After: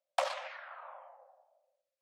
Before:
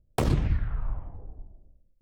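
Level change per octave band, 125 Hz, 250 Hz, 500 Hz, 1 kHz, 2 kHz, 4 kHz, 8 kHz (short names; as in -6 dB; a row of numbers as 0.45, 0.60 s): under -40 dB, under -40 dB, -3.5 dB, +0.5 dB, +0.5 dB, 0.0 dB, n/a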